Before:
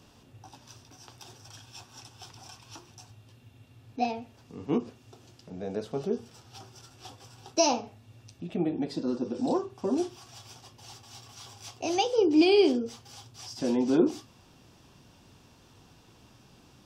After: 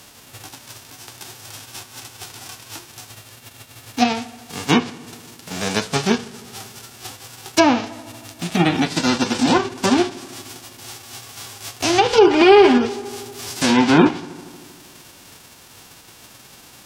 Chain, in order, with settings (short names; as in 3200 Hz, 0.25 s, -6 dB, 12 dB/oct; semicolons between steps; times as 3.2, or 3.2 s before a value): spectral whitening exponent 0.3; treble ducked by the level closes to 2100 Hz, closed at -20.5 dBFS; 12.08–12.78 comb 4.9 ms, depth 73%; darkening echo 78 ms, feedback 80%, low-pass 4100 Hz, level -22 dB; maximiser +13 dB; gain -1 dB